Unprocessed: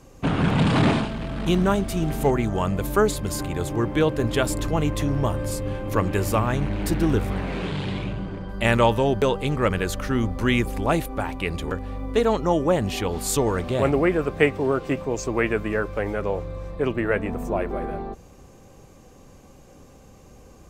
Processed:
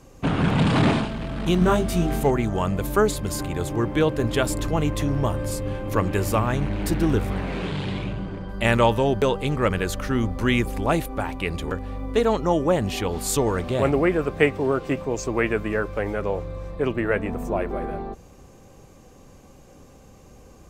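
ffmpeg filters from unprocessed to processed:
ffmpeg -i in.wav -filter_complex "[0:a]asettb=1/sr,asplit=3[link_01][link_02][link_03];[link_01]atrim=end=1.594[link_04];[link_02]atrim=start=1.59:end=2.2,asetpts=PTS-STARTPTS,afade=type=in:duration=0.004:curve=qsin,afade=type=out:start_time=0.606:duration=0.004:curve=qsin,asplit=2[link_05][link_06];[link_06]adelay=23,volume=-2dB[link_07];[link_05][link_07]amix=inputs=2:normalize=0,atrim=end_sample=26901[link_08];[link_03]atrim=start=2.196[link_09];[link_04][link_08]acrossfade=duration=0.004:curve1=hsin:curve2=qsin[link_10];[link_10][link_09]acrossfade=duration=0.004:curve1=qsin:curve2=hsin" out.wav

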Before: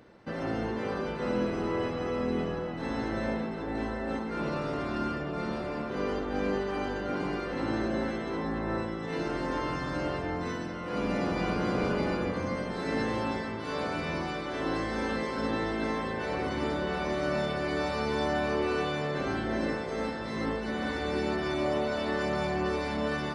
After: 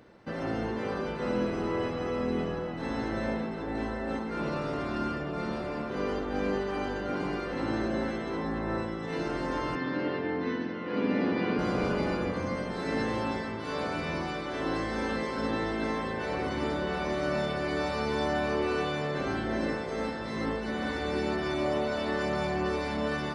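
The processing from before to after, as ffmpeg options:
ffmpeg -i in.wav -filter_complex "[0:a]asettb=1/sr,asplit=3[link_01][link_02][link_03];[link_01]atrim=end=9.754[link_04];[link_02]atrim=start=9.75:end=11.59,asetpts=PTS-STARTPTS,afade=type=in:duration=0.004:curve=qsin,afade=type=out:start_time=1.836:duration=0.004:curve=qsin,highpass=frequency=110:width=0.5412,highpass=frequency=110:width=1.3066,equalizer=frequency=150:width_type=q:width=4:gain=-7,equalizer=frequency=250:width_type=q:width=4:gain=8,equalizer=frequency=430:width_type=q:width=4:gain=5,equalizer=frequency=670:width_type=q:width=4:gain=-6,equalizer=frequency=1300:width_type=q:width=4:gain=-4,equalizer=frequency=1800:width_type=q:width=4:gain=4,lowpass=frequency=4300:width=0.5412,lowpass=frequency=4300:width=1.3066[link_05];[link_03]atrim=start=11.586[link_06];[link_04][link_05]acrossfade=duration=0.004:curve1=hsin:curve2=qsin[link_07];[link_07][link_06]acrossfade=duration=0.004:curve1=qsin:curve2=hsin" out.wav

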